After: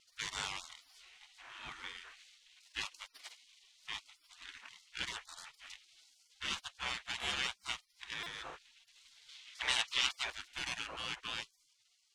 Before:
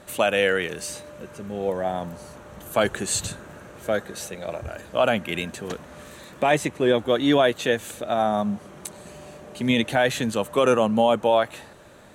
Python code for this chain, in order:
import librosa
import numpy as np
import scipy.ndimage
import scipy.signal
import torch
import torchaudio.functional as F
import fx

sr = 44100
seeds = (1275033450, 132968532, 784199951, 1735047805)

y = scipy.ndimage.median_filter(x, 9, mode='constant')
y = fx.spec_gate(y, sr, threshold_db=-30, keep='weak')
y = fx.peak_eq(y, sr, hz=3300.0, db=fx.steps((0.0, 5.0), (9.29, 14.0), (10.3, 3.0)), octaves=2.8)
y = fx.vibrato(y, sr, rate_hz=2.4, depth_cents=25.0)
y = fx.air_absorb(y, sr, metres=76.0)
y = fx.buffer_glitch(y, sr, at_s=(8.23,), block=128, repeats=10)